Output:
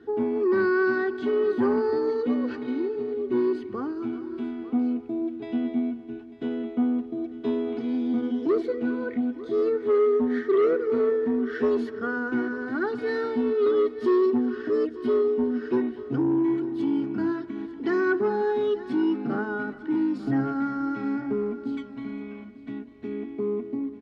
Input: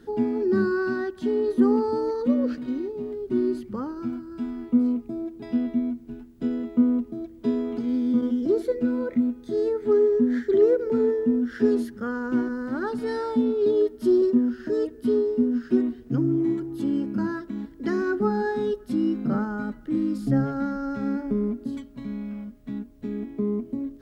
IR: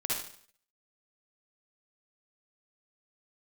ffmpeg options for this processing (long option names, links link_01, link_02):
-filter_complex "[0:a]aecho=1:1:2.7:0.64,acrossover=split=1800[link_01][link_02];[link_01]asoftclip=type=tanh:threshold=-17dB[link_03];[link_02]dynaudnorm=framelen=100:gausssize=7:maxgain=6.5dB[link_04];[link_03][link_04]amix=inputs=2:normalize=0,highpass=110,lowpass=2700,asplit=2[link_05][link_06];[link_06]aecho=0:1:234|402|897:0.1|0.126|0.15[link_07];[link_05][link_07]amix=inputs=2:normalize=0" -ar 44100 -c:a libmp3lame -b:a 80k